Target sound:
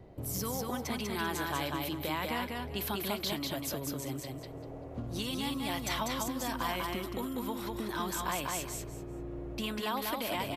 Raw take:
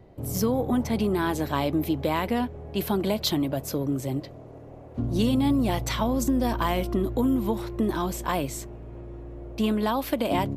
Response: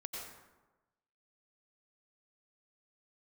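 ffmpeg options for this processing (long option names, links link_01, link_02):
-filter_complex "[0:a]acrossover=split=1000[link_01][link_02];[link_01]acompressor=threshold=-36dB:ratio=6[link_03];[link_02]alimiter=level_in=0.5dB:limit=-24dB:level=0:latency=1:release=50,volume=-0.5dB[link_04];[link_03][link_04]amix=inputs=2:normalize=0,aecho=1:1:195|390|585:0.708|0.163|0.0375,volume=-1.5dB"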